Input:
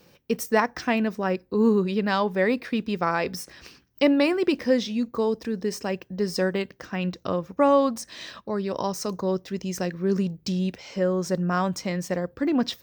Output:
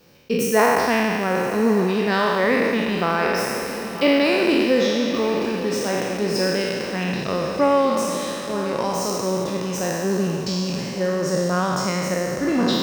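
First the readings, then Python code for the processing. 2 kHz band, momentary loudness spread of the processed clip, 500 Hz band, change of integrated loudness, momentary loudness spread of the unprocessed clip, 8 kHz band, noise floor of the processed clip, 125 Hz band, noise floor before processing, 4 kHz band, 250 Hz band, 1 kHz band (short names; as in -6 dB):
+7.0 dB, 7 LU, +4.5 dB, +4.5 dB, 10 LU, +8.5 dB, -29 dBFS, +3.5 dB, -60 dBFS, +7.5 dB, +3.0 dB, +5.5 dB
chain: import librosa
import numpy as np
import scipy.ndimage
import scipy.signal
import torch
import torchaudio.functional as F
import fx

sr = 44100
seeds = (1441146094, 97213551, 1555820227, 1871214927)

y = fx.spec_trails(x, sr, decay_s=2.24)
y = fx.echo_diffused(y, sr, ms=1027, feedback_pct=62, wet_db=-12)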